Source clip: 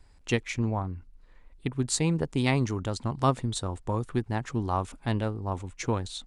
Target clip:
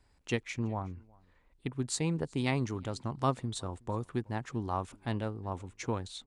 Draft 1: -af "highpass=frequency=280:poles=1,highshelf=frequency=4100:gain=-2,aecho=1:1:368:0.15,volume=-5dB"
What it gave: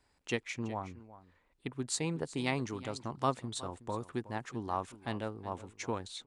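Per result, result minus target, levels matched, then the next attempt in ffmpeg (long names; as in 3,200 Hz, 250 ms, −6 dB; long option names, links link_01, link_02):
echo-to-direct +10.5 dB; 125 Hz band −4.0 dB
-af "highpass=frequency=280:poles=1,highshelf=frequency=4100:gain=-2,aecho=1:1:368:0.0447,volume=-5dB"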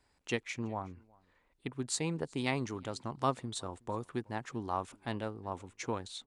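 125 Hz band −4.0 dB
-af "highpass=frequency=74:poles=1,highshelf=frequency=4100:gain=-2,aecho=1:1:368:0.0447,volume=-5dB"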